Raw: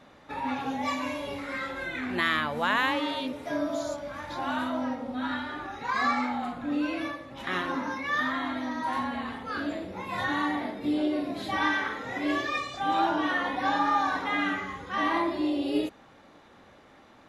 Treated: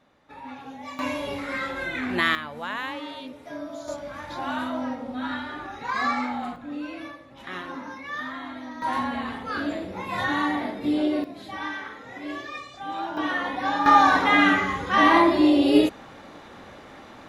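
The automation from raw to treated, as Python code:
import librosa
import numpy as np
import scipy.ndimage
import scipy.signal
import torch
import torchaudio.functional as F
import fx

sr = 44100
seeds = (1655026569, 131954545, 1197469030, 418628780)

y = fx.gain(x, sr, db=fx.steps((0.0, -8.5), (0.99, 4.0), (2.35, -6.0), (3.88, 1.0), (6.56, -5.0), (8.82, 3.5), (11.24, -6.0), (13.17, 1.0), (13.86, 10.0)))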